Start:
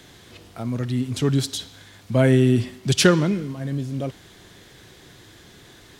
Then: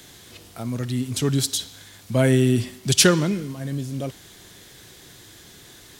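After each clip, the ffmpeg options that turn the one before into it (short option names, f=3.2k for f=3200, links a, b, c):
-af "highshelf=f=5.3k:g=12,volume=-1.5dB"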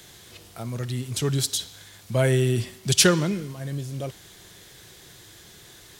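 -af "equalizer=f=260:t=o:w=0.27:g=-9.5,volume=-1.5dB"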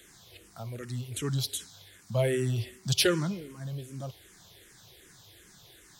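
-filter_complex "[0:a]asplit=2[a][b];[b]afreqshift=-2.6[c];[a][c]amix=inputs=2:normalize=1,volume=-4dB"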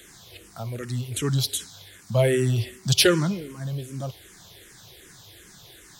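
-af "asoftclip=type=hard:threshold=-11.5dB,volume=6.5dB"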